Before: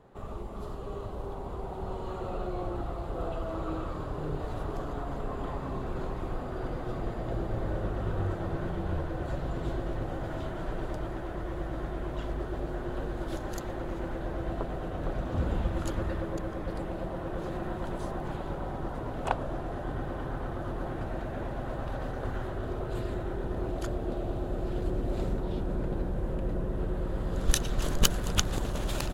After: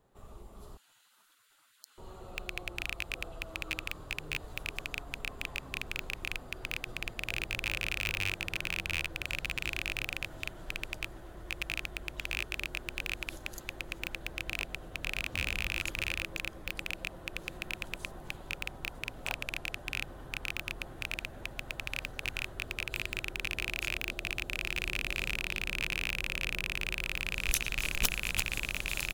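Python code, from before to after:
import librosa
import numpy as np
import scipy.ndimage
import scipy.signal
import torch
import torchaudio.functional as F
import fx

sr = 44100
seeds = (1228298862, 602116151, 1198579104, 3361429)

y = fx.rattle_buzz(x, sr, strikes_db=-31.0, level_db=-9.0)
y = fx.spec_gate(y, sr, threshold_db=-25, keep='weak', at=(0.77, 1.98))
y = F.preemphasis(torch.from_numpy(y), 0.8).numpy()
y = (np.mod(10.0 ** (11.0 / 20.0) * y + 1.0, 2.0) - 1.0) / 10.0 ** (11.0 / 20.0)
y = fx.low_shelf(y, sr, hz=72.0, db=5.5)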